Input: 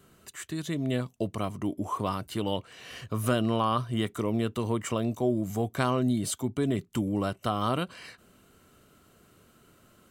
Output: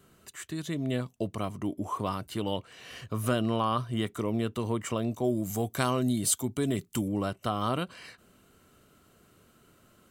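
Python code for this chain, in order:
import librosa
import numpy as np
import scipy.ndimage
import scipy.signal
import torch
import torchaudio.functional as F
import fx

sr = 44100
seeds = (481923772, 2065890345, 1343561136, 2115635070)

y = fx.high_shelf(x, sr, hz=4800.0, db=11.0, at=(5.24, 7.08))
y = y * 10.0 ** (-1.5 / 20.0)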